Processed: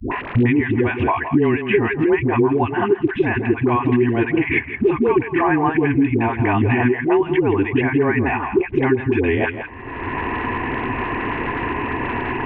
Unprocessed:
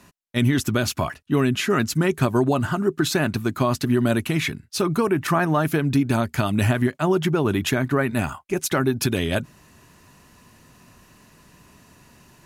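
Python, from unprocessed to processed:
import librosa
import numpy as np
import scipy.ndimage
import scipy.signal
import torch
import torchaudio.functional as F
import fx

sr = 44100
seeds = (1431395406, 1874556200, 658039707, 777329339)

y = fx.fixed_phaser(x, sr, hz=890.0, stages=8)
y = y + 10.0 ** (-13.5 / 20.0) * np.pad(y, (int(165 * sr / 1000.0), 0))[:len(y)]
y = fx.dmg_crackle(y, sr, seeds[0], per_s=110.0, level_db=-39.0)
y = scipy.signal.sosfilt(scipy.signal.butter(6, 2600.0, 'lowpass', fs=sr, output='sos'), y)
y = fx.dispersion(y, sr, late='highs', ms=117.0, hz=480.0)
y = fx.band_squash(y, sr, depth_pct=100)
y = y * 10.0 ** (7.0 / 20.0)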